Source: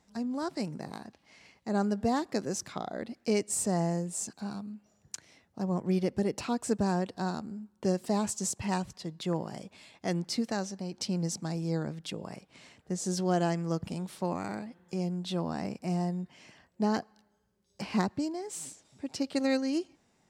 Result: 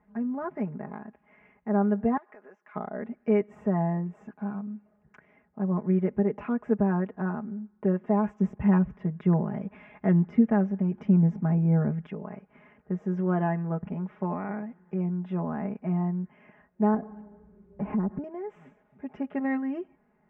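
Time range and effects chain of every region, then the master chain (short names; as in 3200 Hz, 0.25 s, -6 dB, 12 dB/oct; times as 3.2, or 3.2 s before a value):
2.17–2.75 HPF 680 Hz + compressor 10:1, threshold -46 dBFS
8.39–12.07 low shelf 300 Hz +10.5 dB + mismatched tape noise reduction encoder only
16.94–18.24 G.711 law mismatch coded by mu + tilt shelf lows +10 dB, about 1100 Hz + compressor 4:1, threshold -31 dBFS
whole clip: inverse Chebyshev low-pass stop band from 4000 Hz, stop band 40 dB; comb 4.8 ms, depth 80%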